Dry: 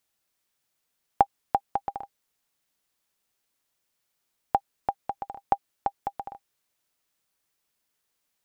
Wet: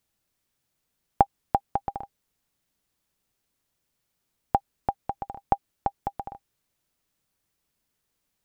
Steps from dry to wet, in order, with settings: low shelf 300 Hz +12 dB; gain -1 dB

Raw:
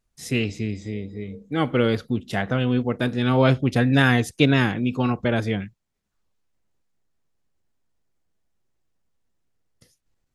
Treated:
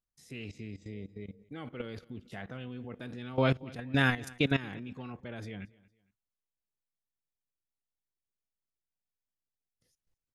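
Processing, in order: dynamic EQ 2300 Hz, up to +3 dB, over -39 dBFS, Q 1.4; level quantiser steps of 17 dB; feedback echo 0.229 s, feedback 33%, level -23 dB; gain -7.5 dB

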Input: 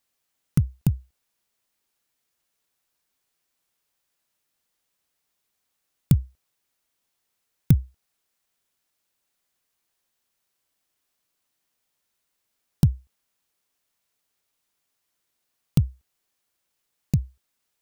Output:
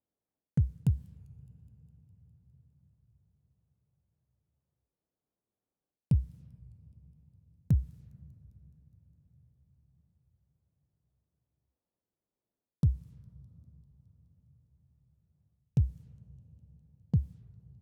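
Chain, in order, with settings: HPF 57 Hz 6 dB/oct; low-pass opened by the level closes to 500 Hz, open at -26 dBFS; dynamic EQ 190 Hz, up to +4 dB, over -27 dBFS, Q 0.73; reverse; compressor, threshold -23 dBFS, peak gain reduction 14.5 dB; reverse; thin delay 0.204 s, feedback 71%, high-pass 3900 Hz, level -23 dB; on a send at -20.5 dB: reverb RT60 5.5 s, pre-delay 12 ms; on the sum: record warp 33 1/3 rpm, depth 160 cents

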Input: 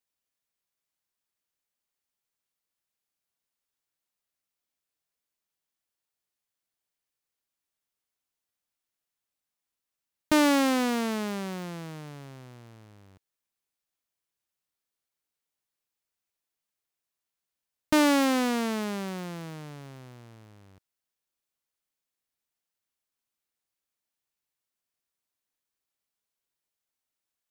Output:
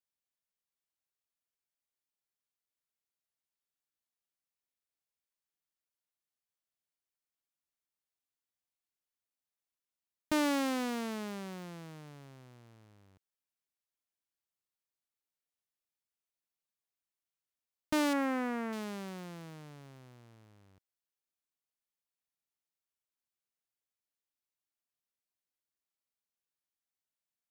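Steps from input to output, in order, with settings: 18.13–18.73 resonant high shelf 2700 Hz -10.5 dB, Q 1.5; gain -8.5 dB

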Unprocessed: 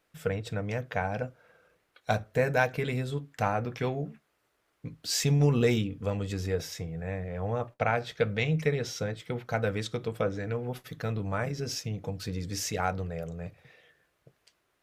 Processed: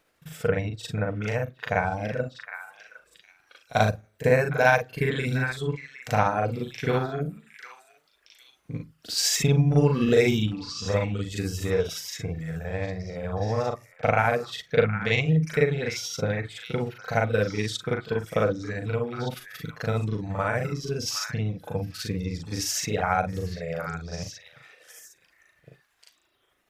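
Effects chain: reverb removal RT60 0.64 s; granular stretch 1.8×, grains 0.17 s; delay with a stepping band-pass 0.76 s, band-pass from 1600 Hz, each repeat 1.4 oct, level -7 dB; gain +6.5 dB

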